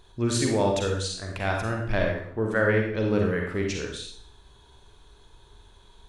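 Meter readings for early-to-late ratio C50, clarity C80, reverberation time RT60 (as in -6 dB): 2.5 dB, 6.5 dB, 0.60 s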